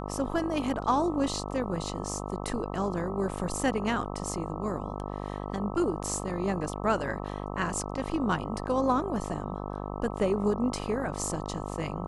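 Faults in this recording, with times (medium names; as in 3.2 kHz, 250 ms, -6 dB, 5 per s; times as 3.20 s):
buzz 50 Hz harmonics 26 -36 dBFS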